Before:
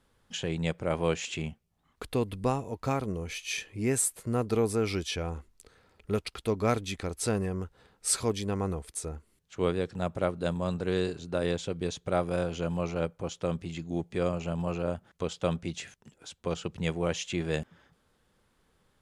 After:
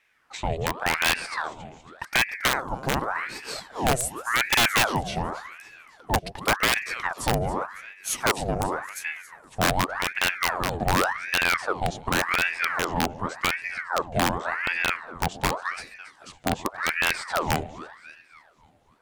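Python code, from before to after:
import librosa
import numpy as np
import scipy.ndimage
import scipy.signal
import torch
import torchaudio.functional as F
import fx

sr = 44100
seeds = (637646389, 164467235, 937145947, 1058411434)

y = fx.peak_eq(x, sr, hz=400.0, db=9.5, octaves=1.7)
y = fx.echo_split(y, sr, split_hz=390.0, low_ms=128, high_ms=276, feedback_pct=52, wet_db=-14)
y = (np.mod(10.0 ** (13.0 / 20.0) * y + 1.0, 2.0) - 1.0) / 10.0 ** (13.0 / 20.0)
y = fx.ring_lfo(y, sr, carrier_hz=1200.0, swing_pct=80, hz=0.88)
y = y * librosa.db_to_amplitude(1.5)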